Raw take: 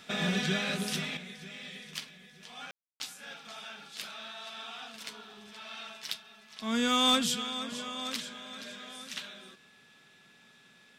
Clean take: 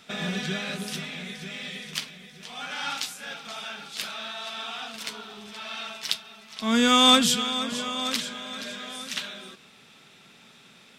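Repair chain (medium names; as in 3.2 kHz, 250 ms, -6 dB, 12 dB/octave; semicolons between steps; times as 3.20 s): clip repair -18 dBFS; band-stop 1.7 kHz, Q 30; room tone fill 2.71–3.00 s; gain correction +8 dB, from 1.17 s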